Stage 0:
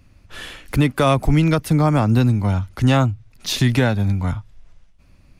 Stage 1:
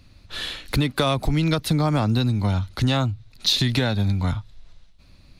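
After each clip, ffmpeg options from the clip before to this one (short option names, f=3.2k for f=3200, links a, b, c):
-af "equalizer=f=4k:w=2.8:g=13.5,acompressor=threshold=-17dB:ratio=6"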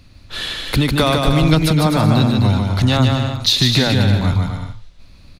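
-af "aecho=1:1:150|255|328.5|380|416:0.631|0.398|0.251|0.158|0.1,volume=5dB"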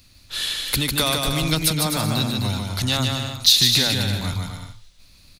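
-af "crystalizer=i=5.5:c=0,volume=-10dB"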